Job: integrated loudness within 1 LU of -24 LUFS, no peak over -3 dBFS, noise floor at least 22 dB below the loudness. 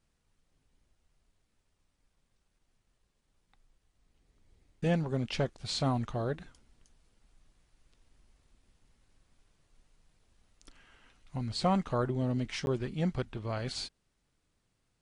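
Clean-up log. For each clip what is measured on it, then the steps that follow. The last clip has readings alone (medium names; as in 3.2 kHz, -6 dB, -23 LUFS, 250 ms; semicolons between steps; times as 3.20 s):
dropouts 1; longest dropout 11 ms; loudness -33.5 LUFS; peak level -17.0 dBFS; loudness target -24.0 LUFS
-> interpolate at 12.66 s, 11 ms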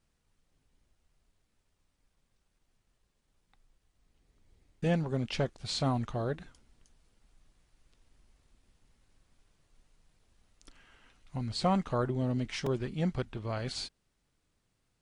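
dropouts 0; loudness -33.5 LUFS; peak level -17.0 dBFS; loudness target -24.0 LUFS
-> trim +9.5 dB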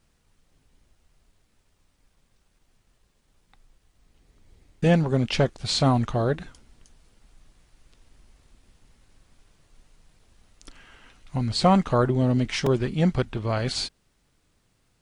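loudness -24.0 LUFS; peak level -7.5 dBFS; noise floor -68 dBFS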